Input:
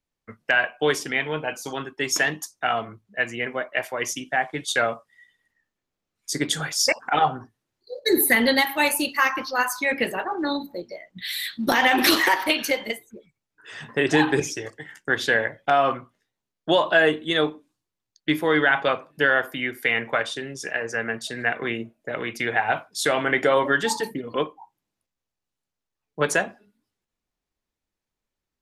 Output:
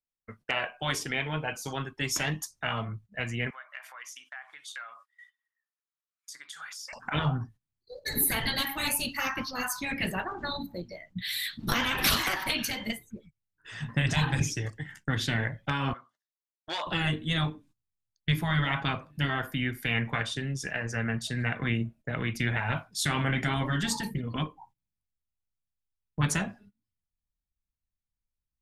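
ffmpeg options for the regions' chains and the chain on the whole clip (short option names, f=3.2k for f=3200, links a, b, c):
-filter_complex "[0:a]asettb=1/sr,asplit=3[a][b][c];[a]atrim=end=3.504[d];[b]atrim=start=3.5:end=6.93,asetpts=PTS-STARTPTS,afade=t=in:d=0.004:c=qsin,afade=t=out:st=3.426:d=0.004:c=qsin,acompressor=threshold=-39dB:ratio=5:attack=3.2:release=140:knee=1:detection=peak,highpass=f=1.2k:t=q:w=2.2[e];[c]atrim=start=6.926[f];[d][e]acrossfade=d=0.004:c1=hsin:c2=qsin[g];[g][f]acrossfade=d=0.004:c1=qsin:c2=hsin,asettb=1/sr,asplit=3[h][i][j];[h]atrim=end=15.934[k];[i]atrim=start=15.93:end=16.87,asetpts=PTS-STARTPTS,afade=t=in:d=0.004:c=qsin,afade=t=out:st=0.936:d=0.004:c=qsin,equalizer=f=2.4k:w=2.9:g=-15,asoftclip=type=hard:threshold=-15dB,highpass=780,lowpass=7.5k[l];[j]atrim=start=16.866[m];[k][l]acrossfade=d=0.004:c1=hsin:c2=qsin[n];[n][m]acrossfade=d=0.004:c1=qsin:c2=hsin,agate=range=-15dB:threshold=-52dB:ratio=16:detection=peak,afftfilt=real='re*lt(hypot(re,im),0.355)':imag='im*lt(hypot(re,im),0.355)':win_size=1024:overlap=0.75,asubboost=boost=10:cutoff=130,volume=-3dB"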